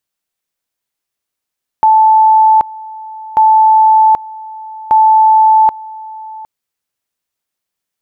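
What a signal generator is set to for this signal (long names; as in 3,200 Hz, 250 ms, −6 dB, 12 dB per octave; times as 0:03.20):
tone at two levels in turn 875 Hz −4 dBFS, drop 21 dB, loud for 0.78 s, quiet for 0.76 s, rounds 3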